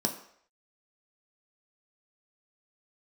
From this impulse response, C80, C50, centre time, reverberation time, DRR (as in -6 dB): 13.0 dB, 10.5 dB, 16 ms, 0.65 s, 2.0 dB